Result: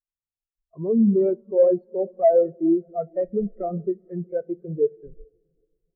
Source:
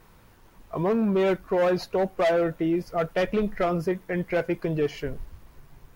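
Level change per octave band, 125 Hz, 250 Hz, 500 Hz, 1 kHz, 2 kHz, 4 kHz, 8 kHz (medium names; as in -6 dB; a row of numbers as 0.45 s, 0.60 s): -1.5 dB, +3.0 dB, +3.5 dB, -2.0 dB, under -20 dB, under -40 dB, no reading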